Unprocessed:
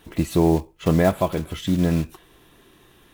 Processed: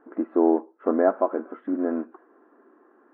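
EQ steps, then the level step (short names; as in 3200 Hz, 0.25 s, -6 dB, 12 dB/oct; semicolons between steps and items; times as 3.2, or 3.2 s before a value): brick-wall FIR high-pass 220 Hz; elliptic low-pass 1500 Hz, stop band 80 dB; notch 940 Hz, Q 21; 0.0 dB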